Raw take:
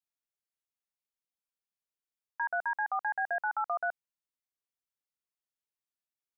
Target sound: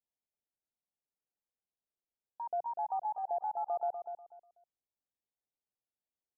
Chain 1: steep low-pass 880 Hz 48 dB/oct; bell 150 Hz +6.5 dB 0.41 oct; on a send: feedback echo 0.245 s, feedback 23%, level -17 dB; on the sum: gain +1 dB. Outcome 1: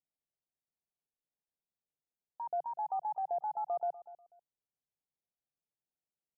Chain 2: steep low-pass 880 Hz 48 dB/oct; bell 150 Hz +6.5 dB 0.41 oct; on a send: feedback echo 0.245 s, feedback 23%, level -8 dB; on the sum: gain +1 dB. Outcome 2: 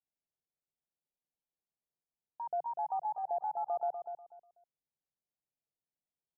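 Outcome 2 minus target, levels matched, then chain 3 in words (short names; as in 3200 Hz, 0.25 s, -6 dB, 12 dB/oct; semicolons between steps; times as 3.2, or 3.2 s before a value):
125 Hz band +4.0 dB
steep low-pass 880 Hz 48 dB/oct; bell 150 Hz -2 dB 0.41 oct; on a send: feedback echo 0.245 s, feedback 23%, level -8 dB; on the sum: gain +1 dB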